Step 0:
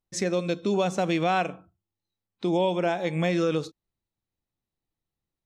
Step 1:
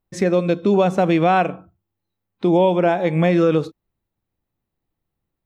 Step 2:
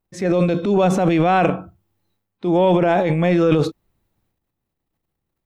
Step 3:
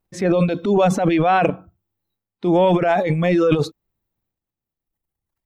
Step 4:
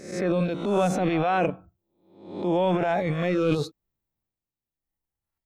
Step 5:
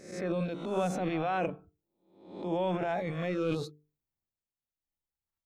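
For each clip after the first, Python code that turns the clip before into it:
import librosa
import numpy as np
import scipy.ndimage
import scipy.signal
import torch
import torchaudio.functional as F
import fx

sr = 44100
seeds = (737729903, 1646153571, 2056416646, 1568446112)

y1 = fx.peak_eq(x, sr, hz=6400.0, db=-13.0, octaves=2.0)
y1 = F.gain(torch.from_numpy(y1), 9.0).numpy()
y2 = fx.transient(y1, sr, attack_db=-6, sustain_db=10)
y3 = fx.dereverb_blind(y2, sr, rt60_s=1.7)
y3 = F.gain(torch.from_numpy(y3), 1.5).numpy()
y4 = fx.spec_swells(y3, sr, rise_s=0.65)
y4 = F.gain(torch.from_numpy(y4), -8.5).numpy()
y5 = fx.hum_notches(y4, sr, base_hz=50, count=9)
y5 = F.gain(torch.from_numpy(y5), -7.5).numpy()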